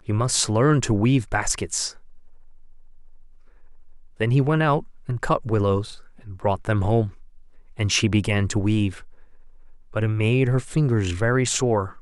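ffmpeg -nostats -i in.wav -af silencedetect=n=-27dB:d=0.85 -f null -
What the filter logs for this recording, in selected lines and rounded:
silence_start: 1.88
silence_end: 4.21 | silence_duration: 2.32
silence_start: 8.90
silence_end: 9.96 | silence_duration: 1.06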